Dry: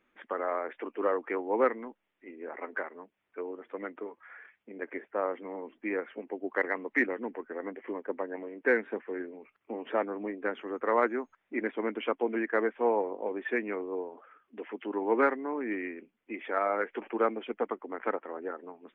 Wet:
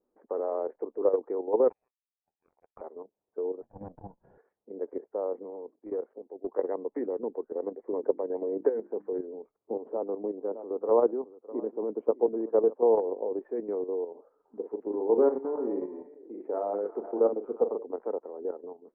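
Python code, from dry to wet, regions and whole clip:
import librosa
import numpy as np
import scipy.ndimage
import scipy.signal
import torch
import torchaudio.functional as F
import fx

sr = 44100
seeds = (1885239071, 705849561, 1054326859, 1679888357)

y = fx.chain(x, sr, fx.peak_eq(hz=200.0, db=5.5, octaves=1.7),
    fx.power_curve(exponent=3.0),
    fx.freq_invert(carrier_hz=2800), at=(1.69, 2.81))
y = fx.chain(y, sr, fx.lower_of_two(delay_ms=1.2),
    fx.transient(attack_db=-11, sustain_db=-7),
    fx.peak_eq(hz=170.0, db=11.5, octaves=1.3), at=(3.62, 4.38))
y = fx.chain(y, sr, fx.highpass(hz=190.0, slope=6),
    fx.level_steps(step_db=11),
    fx.clip_hard(threshold_db=-30.0), at=(5.5, 6.47))
y = fx.chain(y, sr, fx.hum_notches(base_hz=50, count=7),
    fx.band_squash(depth_pct=100), at=(7.93, 9.13))
y = fx.chain(y, sr, fx.highpass(hz=85.0, slope=24),
    fx.band_shelf(hz=2200.0, db=-8.0, octaves=1.3),
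    fx.echo_single(ms=610, db=-17.5), at=(9.76, 13.06))
y = fx.chain(y, sr, fx.peak_eq(hz=3000.0, db=-5.5, octaves=2.7),
    fx.doubler(ms=39.0, db=-5.5),
    fx.echo_stepped(ms=116, hz=3000.0, octaves=-0.7, feedback_pct=70, wet_db=-5.5), at=(14.1, 17.83))
y = scipy.signal.sosfilt(scipy.signal.cheby1(3, 1.0, 880.0, 'lowpass', fs=sr, output='sos'), y)
y = fx.peak_eq(y, sr, hz=450.0, db=11.0, octaves=0.79)
y = fx.level_steps(y, sr, step_db=10)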